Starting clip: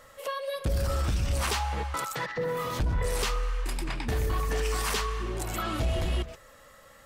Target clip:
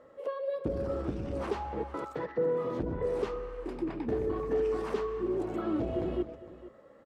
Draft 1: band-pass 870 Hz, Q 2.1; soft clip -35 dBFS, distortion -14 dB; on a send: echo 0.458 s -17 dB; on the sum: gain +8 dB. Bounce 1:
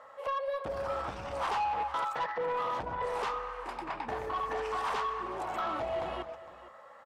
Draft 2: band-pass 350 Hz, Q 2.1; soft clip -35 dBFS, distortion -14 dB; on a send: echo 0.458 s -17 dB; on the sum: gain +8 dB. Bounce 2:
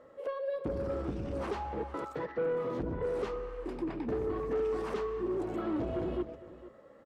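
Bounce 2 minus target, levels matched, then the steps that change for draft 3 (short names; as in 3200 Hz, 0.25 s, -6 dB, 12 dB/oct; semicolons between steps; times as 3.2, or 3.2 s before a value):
soft clip: distortion +13 dB
change: soft clip -26 dBFS, distortion -27 dB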